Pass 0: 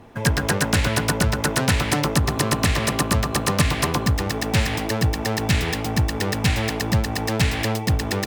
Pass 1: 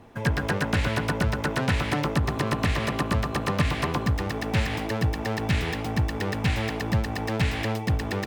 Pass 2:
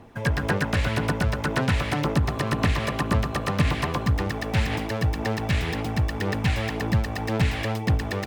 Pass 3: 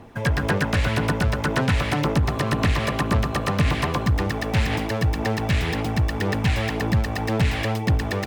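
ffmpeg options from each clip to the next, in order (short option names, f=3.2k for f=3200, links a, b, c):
-filter_complex "[0:a]acrossover=split=3700[a][b];[b]acompressor=threshold=-36dB:ratio=4:attack=1:release=60[c];[a][c]amix=inputs=2:normalize=0,volume=-4dB"
-af "aphaser=in_gain=1:out_gain=1:delay=1.8:decay=0.26:speed=1.9:type=sinusoidal"
-af "asoftclip=type=tanh:threshold=-15dB,volume=3.5dB"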